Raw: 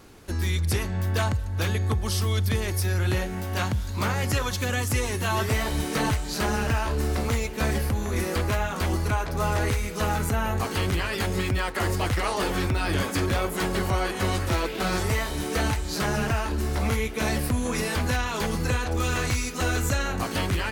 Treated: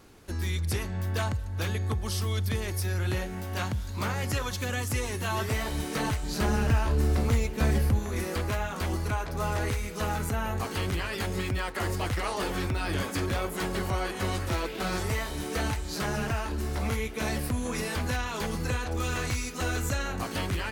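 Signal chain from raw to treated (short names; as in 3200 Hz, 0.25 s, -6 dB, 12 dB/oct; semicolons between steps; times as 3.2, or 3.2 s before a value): 6.23–7.99 low shelf 330 Hz +7 dB; gain -4.5 dB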